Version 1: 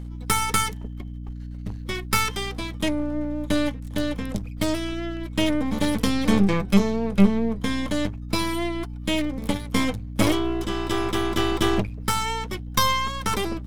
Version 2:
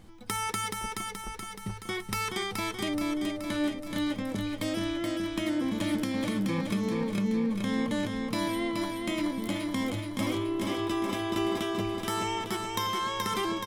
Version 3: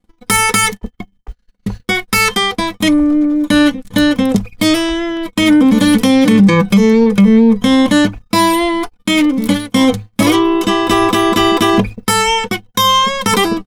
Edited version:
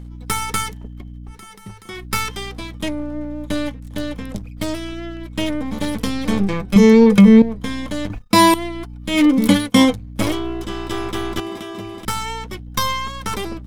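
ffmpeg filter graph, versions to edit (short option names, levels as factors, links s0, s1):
-filter_complex "[1:a]asplit=2[s0][s1];[2:a]asplit=3[s2][s3][s4];[0:a]asplit=6[s5][s6][s7][s8][s9][s10];[s5]atrim=end=1.42[s11];[s0]atrim=start=1.26:end=2.05[s12];[s6]atrim=start=1.89:end=6.762[s13];[s2]atrim=start=6.758:end=7.422[s14];[s7]atrim=start=7.418:end=8.102[s15];[s3]atrim=start=8.098:end=8.542[s16];[s8]atrim=start=8.538:end=9.26[s17];[s4]atrim=start=9.1:end=9.96[s18];[s9]atrim=start=9.8:end=11.402[s19];[s1]atrim=start=11.398:end=12.052[s20];[s10]atrim=start=12.048[s21];[s11][s12]acrossfade=d=0.16:c1=tri:c2=tri[s22];[s22][s13]acrossfade=d=0.16:c1=tri:c2=tri[s23];[s23][s14]acrossfade=d=0.004:c1=hsin:c2=hsin[s24];[s24][s15]acrossfade=d=0.004:c1=hsin:c2=hsin[s25];[s25][s16]acrossfade=d=0.004:c1=hsin:c2=hsin[s26];[s26][s17]acrossfade=d=0.004:c1=hsin:c2=hsin[s27];[s27][s18]acrossfade=d=0.16:c1=tri:c2=tri[s28];[s28][s19]acrossfade=d=0.16:c1=tri:c2=tri[s29];[s29][s20]acrossfade=d=0.004:c1=hsin:c2=hsin[s30];[s30][s21]acrossfade=d=0.004:c1=hsin:c2=hsin"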